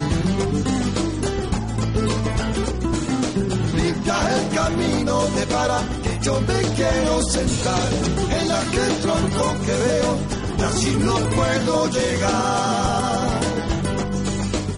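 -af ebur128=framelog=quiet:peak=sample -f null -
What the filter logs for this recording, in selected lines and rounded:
Integrated loudness:
  I:         -21.0 LUFS
  Threshold: -31.0 LUFS
Loudness range:
  LRA:         2.2 LU
  Threshold: -40.8 LUFS
  LRA low:   -22.3 LUFS
  LRA high:  -20.1 LUFS
Sample peak:
  Peak:       -8.9 dBFS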